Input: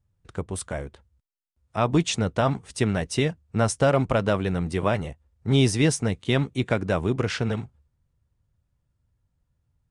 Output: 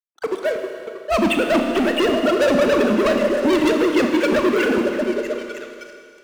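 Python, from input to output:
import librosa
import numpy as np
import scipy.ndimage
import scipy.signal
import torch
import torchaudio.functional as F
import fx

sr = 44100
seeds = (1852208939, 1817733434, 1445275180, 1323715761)

p1 = fx.sine_speech(x, sr)
p2 = fx.high_shelf(p1, sr, hz=2300.0, db=2.5)
p3 = fx.stretch_vocoder(p2, sr, factor=0.63)
p4 = p3 + fx.echo_stepped(p3, sr, ms=315, hz=300.0, octaves=0.7, feedback_pct=70, wet_db=-7.5, dry=0)
p5 = fx.leveller(p4, sr, passes=5)
p6 = fx.rev_schroeder(p5, sr, rt60_s=2.3, comb_ms=26, drr_db=4.0)
y = p6 * librosa.db_to_amplitude(-5.5)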